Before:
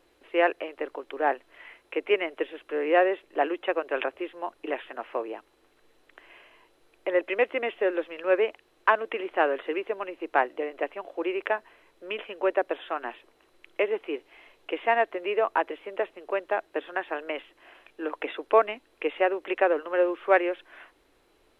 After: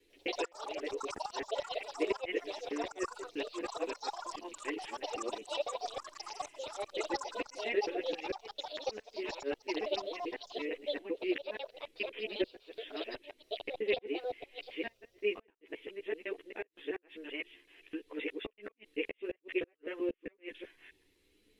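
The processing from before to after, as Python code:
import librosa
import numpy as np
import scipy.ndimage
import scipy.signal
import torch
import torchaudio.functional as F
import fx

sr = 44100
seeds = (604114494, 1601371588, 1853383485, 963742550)

y = fx.local_reverse(x, sr, ms=129.0)
y = fx.low_shelf(y, sr, hz=69.0, db=-8.0)
y = fx.gate_flip(y, sr, shuts_db=-15.0, range_db=-38)
y = fx.chorus_voices(y, sr, voices=6, hz=0.35, base_ms=12, depth_ms=2.4, mix_pct=50)
y = fx.band_shelf(y, sr, hz=930.0, db=-16.0, octaves=1.7)
y = fx.echo_pitch(y, sr, ms=99, semitones=6, count=3, db_per_echo=-3.0)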